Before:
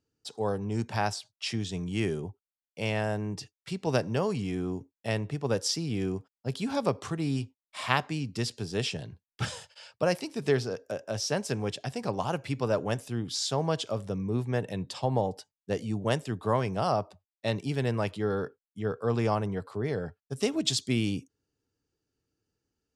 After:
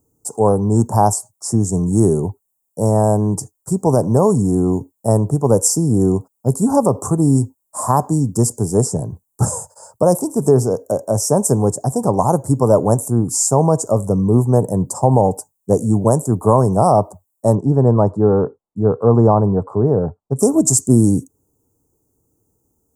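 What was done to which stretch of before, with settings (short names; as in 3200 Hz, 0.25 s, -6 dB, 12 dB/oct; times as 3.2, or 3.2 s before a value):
17.55–20.39 LPF 2400 Hz
whole clip: elliptic band-stop 1000–7400 Hz, stop band 80 dB; high shelf 6400 Hz +11 dB; maximiser +17.5 dB; gain -1 dB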